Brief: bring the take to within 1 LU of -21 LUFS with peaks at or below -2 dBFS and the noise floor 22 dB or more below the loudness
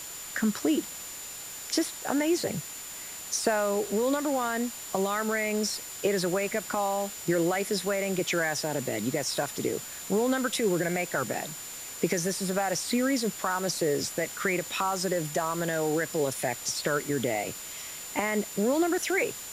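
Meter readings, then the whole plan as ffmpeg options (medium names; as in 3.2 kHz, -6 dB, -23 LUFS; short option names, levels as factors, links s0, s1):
steady tone 7.1 kHz; tone level -41 dBFS; noise floor -41 dBFS; noise floor target -51 dBFS; loudness -29.0 LUFS; peak level -12.0 dBFS; loudness target -21.0 LUFS
-> -af "bandreject=f=7100:w=30"
-af "afftdn=nr=10:nf=-41"
-af "volume=2.51"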